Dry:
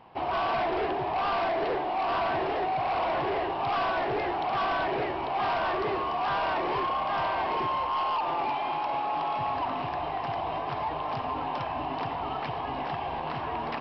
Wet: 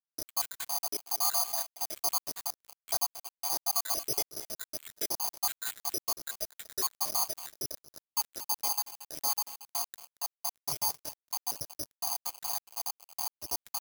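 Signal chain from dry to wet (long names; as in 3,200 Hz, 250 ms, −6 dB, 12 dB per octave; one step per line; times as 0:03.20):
time-frequency cells dropped at random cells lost 83%
delay with a high-pass on its return 730 ms, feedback 43%, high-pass 1,900 Hz, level −15 dB
in parallel at −7.5 dB: wave folding −34 dBFS
on the sum: bad sample-rate conversion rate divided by 8×, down filtered, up zero stuff
on a send: single-tap delay 228 ms −8.5 dB
on the sum: dead-zone distortion −21.5 dBFS
level −5 dB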